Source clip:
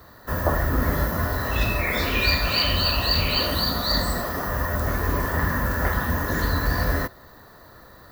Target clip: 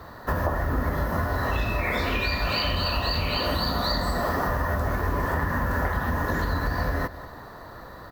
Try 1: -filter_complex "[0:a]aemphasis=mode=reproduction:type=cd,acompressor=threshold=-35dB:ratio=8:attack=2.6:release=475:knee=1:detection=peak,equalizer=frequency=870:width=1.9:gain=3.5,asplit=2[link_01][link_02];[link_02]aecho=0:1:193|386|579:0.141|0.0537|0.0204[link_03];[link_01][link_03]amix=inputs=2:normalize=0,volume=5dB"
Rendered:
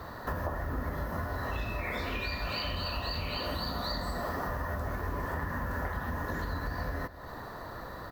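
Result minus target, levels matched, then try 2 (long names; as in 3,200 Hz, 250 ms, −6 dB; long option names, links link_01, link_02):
downward compressor: peak gain reduction +8.5 dB
-filter_complex "[0:a]aemphasis=mode=reproduction:type=cd,acompressor=threshold=-25dB:ratio=8:attack=2.6:release=475:knee=1:detection=peak,equalizer=frequency=870:width=1.9:gain=3.5,asplit=2[link_01][link_02];[link_02]aecho=0:1:193|386|579:0.141|0.0537|0.0204[link_03];[link_01][link_03]amix=inputs=2:normalize=0,volume=5dB"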